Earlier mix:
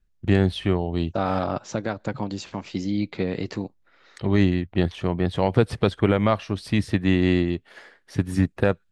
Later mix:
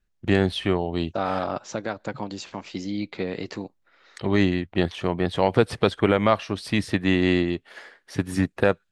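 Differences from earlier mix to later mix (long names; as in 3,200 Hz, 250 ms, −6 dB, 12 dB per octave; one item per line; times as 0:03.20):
first voice +3.0 dB
master: add low-shelf EQ 200 Hz −10 dB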